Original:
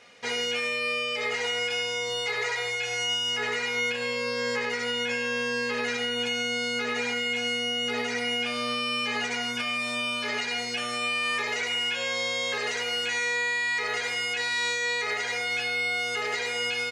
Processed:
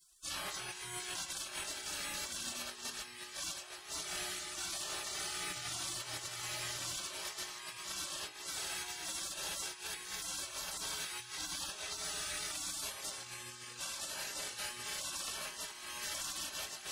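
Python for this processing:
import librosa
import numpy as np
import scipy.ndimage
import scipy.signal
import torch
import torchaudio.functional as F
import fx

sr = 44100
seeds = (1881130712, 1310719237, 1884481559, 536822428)

p1 = fx.hum_notches(x, sr, base_hz=60, count=6, at=(5.5, 6.97))
p2 = fx.moving_average(p1, sr, points=5, at=(11.32, 12.04))
p3 = p2 + fx.echo_wet_highpass(p2, sr, ms=493, feedback_pct=65, hz=2500.0, wet_db=-3.5, dry=0)
p4 = fx.spec_gate(p3, sr, threshold_db=-30, keep='weak')
p5 = fx.over_compress(p4, sr, threshold_db=-52.0, ratio=-0.5)
y = p5 * librosa.db_to_amplitude(10.0)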